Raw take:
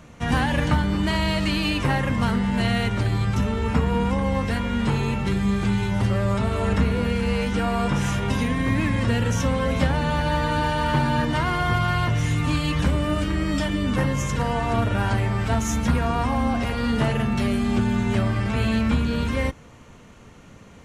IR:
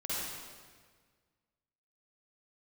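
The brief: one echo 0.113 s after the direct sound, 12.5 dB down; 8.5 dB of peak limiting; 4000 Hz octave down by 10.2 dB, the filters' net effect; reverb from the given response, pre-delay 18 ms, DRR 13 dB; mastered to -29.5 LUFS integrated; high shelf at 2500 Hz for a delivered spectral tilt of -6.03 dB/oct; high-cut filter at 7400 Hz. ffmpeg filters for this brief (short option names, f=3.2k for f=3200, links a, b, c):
-filter_complex "[0:a]lowpass=7.4k,highshelf=f=2.5k:g=-7.5,equalizer=f=4k:t=o:g=-8,alimiter=limit=-17dB:level=0:latency=1,aecho=1:1:113:0.237,asplit=2[a][b];[1:a]atrim=start_sample=2205,adelay=18[c];[b][c]afir=irnorm=-1:irlink=0,volume=-17.5dB[d];[a][d]amix=inputs=2:normalize=0,volume=-4dB"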